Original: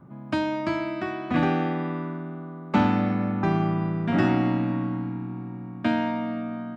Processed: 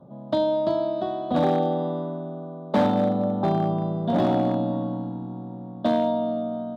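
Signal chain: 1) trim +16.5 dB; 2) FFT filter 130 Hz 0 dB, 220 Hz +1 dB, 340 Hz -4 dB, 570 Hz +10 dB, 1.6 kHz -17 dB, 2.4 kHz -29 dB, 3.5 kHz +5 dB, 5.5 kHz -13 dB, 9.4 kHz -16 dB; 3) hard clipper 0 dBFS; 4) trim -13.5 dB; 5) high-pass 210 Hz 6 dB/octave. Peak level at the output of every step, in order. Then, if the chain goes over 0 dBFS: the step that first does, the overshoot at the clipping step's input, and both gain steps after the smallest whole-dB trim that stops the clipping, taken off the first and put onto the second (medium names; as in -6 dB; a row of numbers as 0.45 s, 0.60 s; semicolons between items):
+9.0 dBFS, +9.0 dBFS, 0.0 dBFS, -13.5 dBFS, -10.0 dBFS; step 1, 9.0 dB; step 1 +7.5 dB, step 4 -4.5 dB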